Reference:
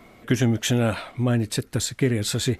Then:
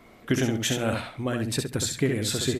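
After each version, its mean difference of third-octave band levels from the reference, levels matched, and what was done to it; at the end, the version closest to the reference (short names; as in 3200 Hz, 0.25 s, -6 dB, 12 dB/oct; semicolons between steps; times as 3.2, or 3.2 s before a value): 5.0 dB: notches 60/120/180/240 Hz; harmonic-percussive split harmonic -4 dB; on a send: feedback echo 67 ms, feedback 16%, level -5 dB; on the sum: gain -1.5 dB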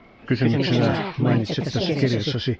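8.0 dB: nonlinear frequency compression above 2300 Hz 1.5:1; echoes that change speed 0.189 s, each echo +3 st, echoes 3; steep low-pass 5000 Hz 36 dB/oct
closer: first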